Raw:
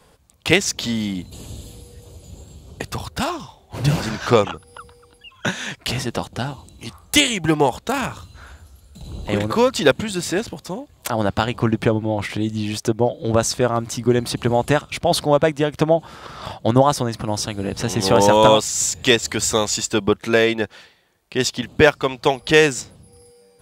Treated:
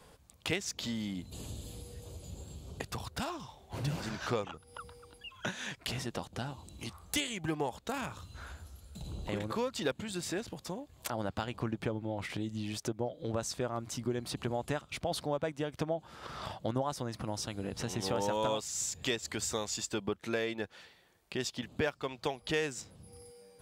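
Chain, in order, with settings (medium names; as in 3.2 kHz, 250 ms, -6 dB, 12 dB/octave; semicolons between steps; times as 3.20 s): compression 2:1, threshold -37 dBFS, peak gain reduction 16 dB; trim -4.5 dB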